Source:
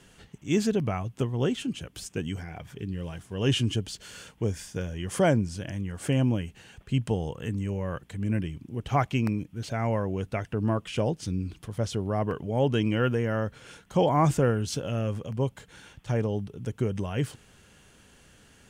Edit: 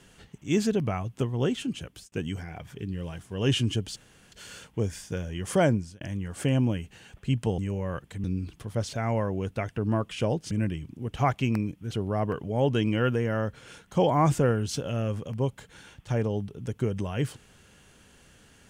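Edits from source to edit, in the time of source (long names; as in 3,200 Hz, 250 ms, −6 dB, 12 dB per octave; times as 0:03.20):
0:01.86–0:02.12: fade out
0:03.96: splice in room tone 0.36 s
0:05.37–0:05.65: fade out
0:07.22–0:07.57: remove
0:08.23–0:09.65: swap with 0:11.27–0:11.92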